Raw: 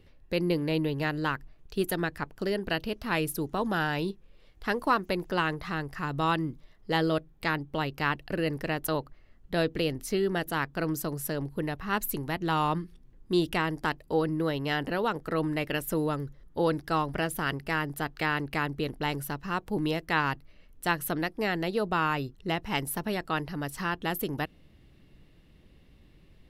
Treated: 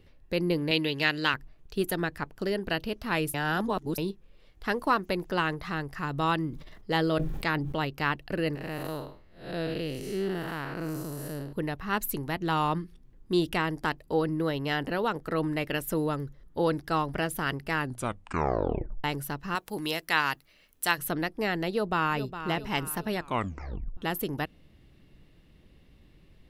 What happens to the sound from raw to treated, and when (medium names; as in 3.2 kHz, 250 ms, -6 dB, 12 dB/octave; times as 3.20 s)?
0.71–1.34 s: frequency weighting D
3.34–3.98 s: reverse
6.50–7.85 s: decay stretcher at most 36 dB/s
8.55–11.53 s: spectral blur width 215 ms
17.77 s: tape stop 1.27 s
19.55–20.98 s: tilt EQ +3 dB/octave
21.70–22.47 s: echo throw 410 ms, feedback 45%, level -11 dB
23.18 s: tape stop 0.79 s